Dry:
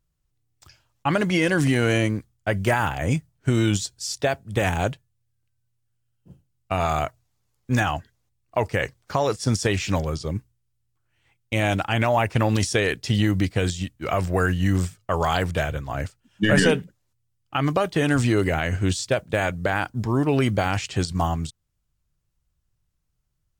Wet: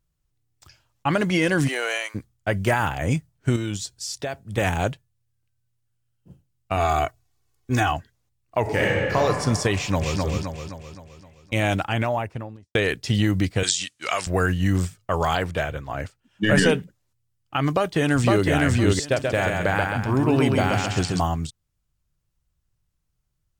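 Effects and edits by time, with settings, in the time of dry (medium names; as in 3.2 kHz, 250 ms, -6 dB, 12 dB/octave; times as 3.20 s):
1.67–2.14 s: high-pass 380 Hz -> 900 Hz 24 dB/octave
3.56–4.58 s: compression 2.5:1, threshold -27 dBFS
6.76–7.93 s: comb 2.7 ms
8.61–9.16 s: reverb throw, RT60 2.4 s, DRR -5 dB
9.75–10.19 s: echo throw 260 ms, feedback 50%, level -2.5 dB
11.73–12.75 s: studio fade out
13.63–14.27 s: frequency weighting ITU-R 468
15.35–16.47 s: tone controls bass -4 dB, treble -5 dB
17.72–18.48 s: echo throw 510 ms, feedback 15%, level -1 dB
19.03–21.20 s: feedback delay 133 ms, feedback 45%, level -3.5 dB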